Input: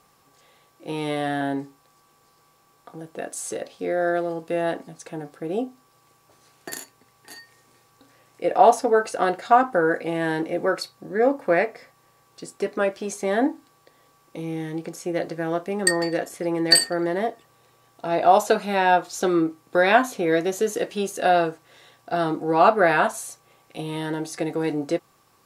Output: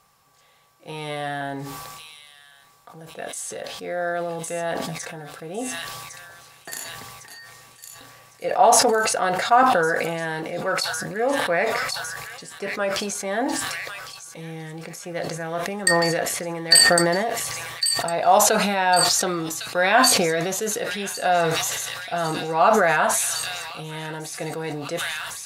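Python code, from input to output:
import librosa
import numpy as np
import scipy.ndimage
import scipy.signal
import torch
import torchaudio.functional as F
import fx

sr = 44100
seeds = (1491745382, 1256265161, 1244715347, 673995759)

y = fx.peak_eq(x, sr, hz=320.0, db=-11.5, octaves=0.96)
y = fx.echo_wet_highpass(y, sr, ms=1106, feedback_pct=56, hz=3100.0, wet_db=-7.5)
y = fx.sustainer(y, sr, db_per_s=24.0)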